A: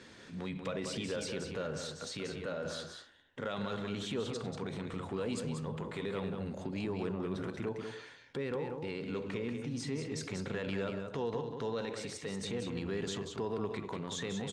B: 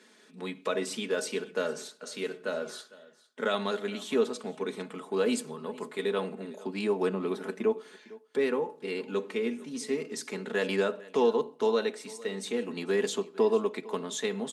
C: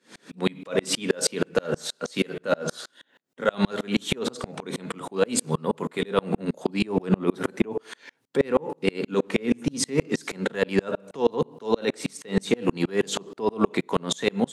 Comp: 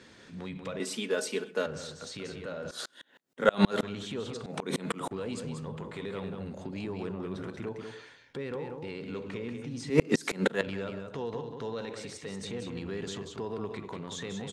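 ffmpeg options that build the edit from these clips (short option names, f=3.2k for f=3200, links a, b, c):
-filter_complex "[2:a]asplit=3[a][b][c];[0:a]asplit=5[d][e][f][g][h];[d]atrim=end=0.802[i];[1:a]atrim=start=0.798:end=1.662[j];[e]atrim=start=1.658:end=2.712[k];[a]atrim=start=2.708:end=3.832[l];[f]atrim=start=3.828:end=4.462[m];[b]atrim=start=4.458:end=5.112[n];[g]atrim=start=5.108:end=9.902[o];[c]atrim=start=9.898:end=10.612[p];[h]atrim=start=10.608[q];[i][j]acrossfade=d=0.004:c1=hsin:c2=hsin[r];[r][k]acrossfade=d=0.004:c1=hsin:c2=hsin[s];[s][l]acrossfade=d=0.004:c1=hsin:c2=hsin[t];[t][m]acrossfade=d=0.004:c1=hsin:c2=hsin[u];[u][n]acrossfade=d=0.004:c1=hsin:c2=hsin[v];[v][o]acrossfade=d=0.004:c1=hsin:c2=hsin[w];[w][p]acrossfade=d=0.004:c1=hsin:c2=hsin[x];[x][q]acrossfade=d=0.004:c1=hsin:c2=hsin"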